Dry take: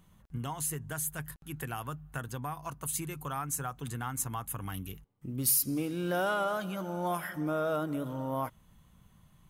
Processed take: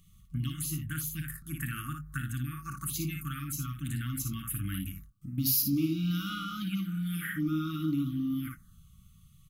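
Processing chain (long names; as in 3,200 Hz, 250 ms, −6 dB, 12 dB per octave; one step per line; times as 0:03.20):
ambience of single reflections 31 ms −14.5 dB, 57 ms −5 dB, 80 ms −16 dB
0:04.88–0:05.38: downward compressor 6 to 1, threshold −39 dBFS, peak gain reduction 8 dB
brick-wall band-stop 340–1,100 Hz
phaser swept by the level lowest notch 250 Hz, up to 1,700 Hz, full sweep at −31 dBFS
level +4 dB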